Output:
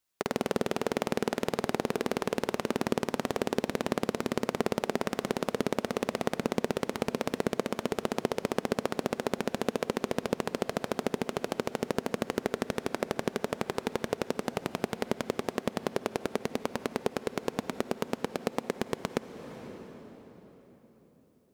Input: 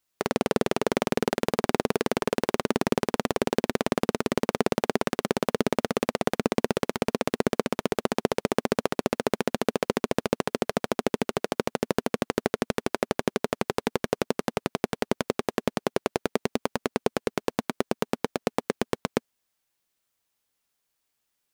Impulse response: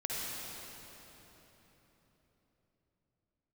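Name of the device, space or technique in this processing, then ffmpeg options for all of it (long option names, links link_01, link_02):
ducked reverb: -filter_complex "[0:a]asplit=3[link_01][link_02][link_03];[1:a]atrim=start_sample=2205[link_04];[link_02][link_04]afir=irnorm=-1:irlink=0[link_05];[link_03]apad=whole_len=949848[link_06];[link_05][link_06]sidechaincompress=threshold=-30dB:ratio=8:attack=41:release=544,volume=-7.5dB[link_07];[link_01][link_07]amix=inputs=2:normalize=0,volume=-5.5dB"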